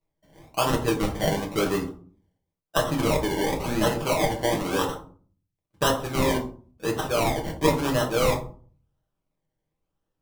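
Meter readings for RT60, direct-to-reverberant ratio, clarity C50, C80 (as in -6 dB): 0.45 s, -0.5 dB, 10.0 dB, 15.0 dB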